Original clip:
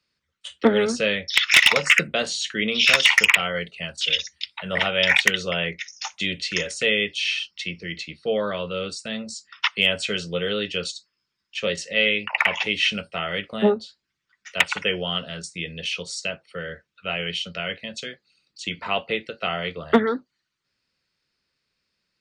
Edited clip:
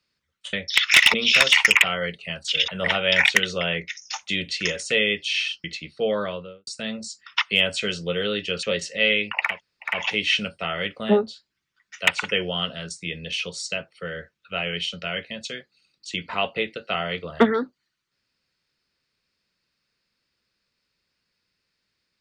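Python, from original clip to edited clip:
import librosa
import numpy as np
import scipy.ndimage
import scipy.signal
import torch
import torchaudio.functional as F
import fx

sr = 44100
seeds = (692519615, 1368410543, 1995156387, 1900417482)

y = fx.studio_fade_out(x, sr, start_s=8.45, length_s=0.48)
y = fx.edit(y, sr, fx.cut(start_s=0.53, length_s=0.6),
    fx.cut(start_s=1.74, length_s=0.93),
    fx.cut(start_s=4.21, length_s=0.38),
    fx.cut(start_s=7.55, length_s=0.35),
    fx.cut(start_s=10.89, length_s=0.7),
    fx.insert_room_tone(at_s=12.45, length_s=0.43, crossfade_s=0.24), tone=tone)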